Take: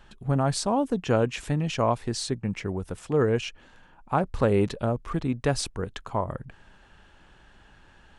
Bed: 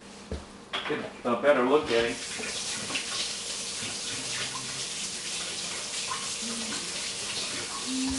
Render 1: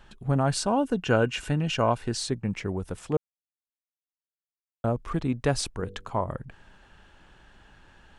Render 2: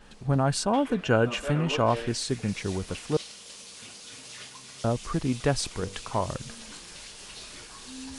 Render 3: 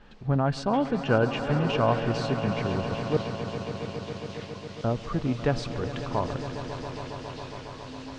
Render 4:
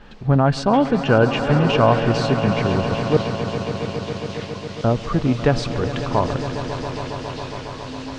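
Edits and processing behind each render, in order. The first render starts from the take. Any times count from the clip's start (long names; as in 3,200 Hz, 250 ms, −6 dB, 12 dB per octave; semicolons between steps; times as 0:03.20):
0:00.47–0:02.17: hollow resonant body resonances 1,500/2,800 Hz, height 13 dB; 0:03.17–0:04.84: silence; 0:05.76–0:06.21: hum removal 48.56 Hz, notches 11
mix in bed −11 dB
high-frequency loss of the air 180 metres; echo that builds up and dies away 137 ms, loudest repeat 5, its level −13.5 dB
level +8.5 dB; brickwall limiter −3 dBFS, peak gain reduction 2.5 dB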